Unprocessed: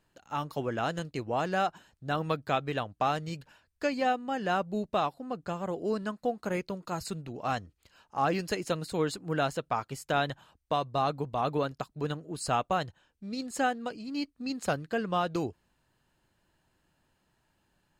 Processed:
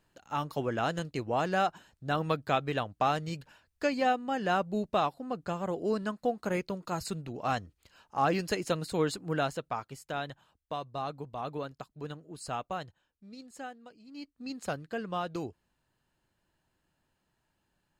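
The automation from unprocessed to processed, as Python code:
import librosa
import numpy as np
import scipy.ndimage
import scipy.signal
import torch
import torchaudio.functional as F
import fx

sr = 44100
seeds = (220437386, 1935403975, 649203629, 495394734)

y = fx.gain(x, sr, db=fx.line((9.21, 0.5), (10.09, -7.5), (12.79, -7.5), (13.94, -16.5), (14.45, -5.0)))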